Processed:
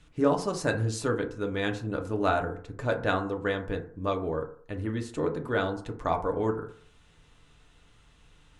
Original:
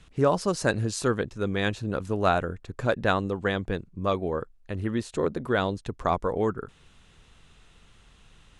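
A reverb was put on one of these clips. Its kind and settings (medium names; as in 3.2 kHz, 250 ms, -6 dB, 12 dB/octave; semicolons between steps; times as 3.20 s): FDN reverb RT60 0.52 s, low-frequency decay 0.85×, high-frequency decay 0.35×, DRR 3 dB; trim -4.5 dB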